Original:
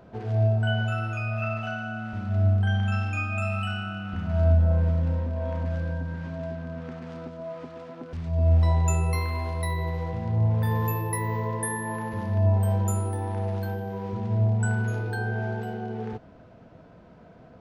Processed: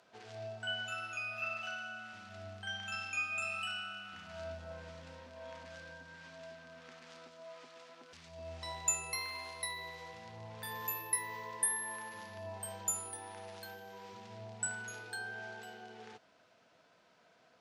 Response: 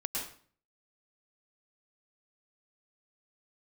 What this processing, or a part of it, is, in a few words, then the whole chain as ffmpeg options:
piezo pickup straight into a mixer: -af "lowpass=7900,aderivative,volume=2"

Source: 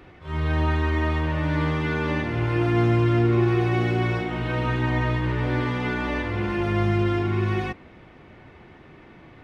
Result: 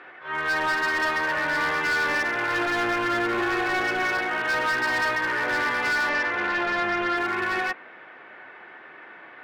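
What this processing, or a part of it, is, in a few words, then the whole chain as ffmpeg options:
megaphone: -filter_complex "[0:a]highpass=600,lowpass=2900,equalizer=f=1600:t=o:w=0.43:g=10,asoftclip=type=hard:threshold=0.0473,asettb=1/sr,asplit=3[s0][s1][s2];[s0]atrim=end=6.094[s3];[s1]atrim=start=6.09:end=7.17,asetpts=PTS-STARTPTS,afade=t=in:d=0.004:c=qsin,afade=t=out:st=1.076:d=0.004:c=qsin,lowpass=5100[s4];[s2]atrim=start=7.166[s5];[s3][s4]acrossfade=d=0.004:c1=hsin:c2=qsin[s6];[s6][s5]acrossfade=d=0.004:c1=qsin:c2=hsin,volume=1.88"

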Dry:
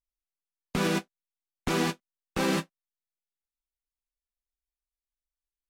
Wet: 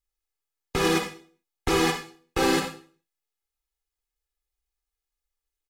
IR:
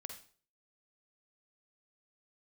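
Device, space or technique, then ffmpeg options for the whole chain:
microphone above a desk: -filter_complex "[0:a]aecho=1:1:2.4:0.84[s0];[1:a]atrim=start_sample=2205[s1];[s0][s1]afir=irnorm=-1:irlink=0,volume=2.37"

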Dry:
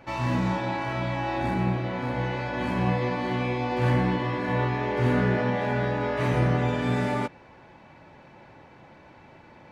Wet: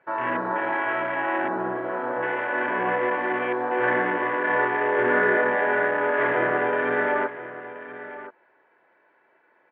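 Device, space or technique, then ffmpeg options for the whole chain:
phone earpiece: -af "afwtdn=0.0224,highpass=370,equalizer=f=390:t=q:w=4:g=4,equalizer=f=550:t=q:w=4:g=-8,equalizer=f=810:t=q:w=4:g=-10,equalizer=f=1200:t=q:w=4:g=-6,equalizer=f=1700:t=q:w=4:g=3,equalizer=f=3100:t=q:w=4:g=9,lowpass=f=3800:w=0.5412,lowpass=f=3800:w=1.3066,firequalizer=gain_entry='entry(200,0);entry(530,13);entry(1600,13);entry(3100,-8);entry(4900,0)':delay=0.05:min_phase=1,aecho=1:1:1028:0.2,volume=0.891"

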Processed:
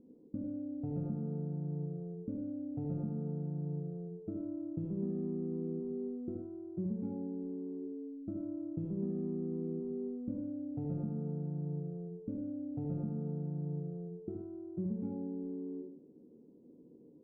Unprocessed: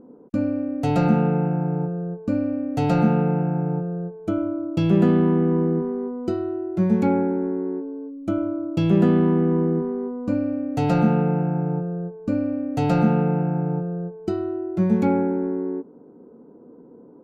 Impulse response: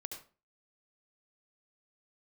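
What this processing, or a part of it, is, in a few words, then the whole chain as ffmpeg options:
television next door: -filter_complex "[0:a]acompressor=threshold=0.0631:ratio=4,lowpass=350[s0];[1:a]atrim=start_sample=2205[s1];[s0][s1]afir=irnorm=-1:irlink=0,volume=0.447"

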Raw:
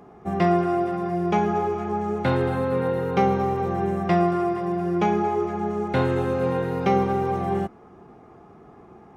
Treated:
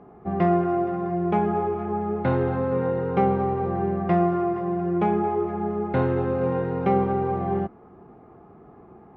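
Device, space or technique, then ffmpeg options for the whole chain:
phone in a pocket: -af "lowpass=3200,highshelf=f=2300:g=-11"

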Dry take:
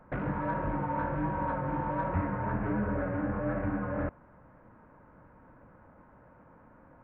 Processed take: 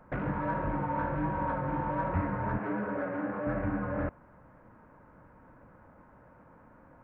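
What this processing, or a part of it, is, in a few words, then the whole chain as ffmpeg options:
exciter from parts: -filter_complex "[0:a]asettb=1/sr,asplit=3[s0][s1][s2];[s0]atrim=end=2.584[s3];[s1]atrim=start=2.58:end=3.47,asetpts=PTS-STARTPTS,afade=t=in:d=0.004:c=qsin,afade=t=out:st=0.886:d=0.004:c=qsin,highpass=230[s4];[s2]atrim=start=3.466[s5];[s3][s4]acrossfade=d=0.004:c1=hsin:c2=qsin[s6];[s6][s5]acrossfade=d=0.004:c1=qsin:c2=hsin,asplit=2[s7][s8];[s8]highpass=f=2300:p=1,asoftclip=type=tanh:threshold=0.0106,volume=0.282[s9];[s7][s9]amix=inputs=2:normalize=0"

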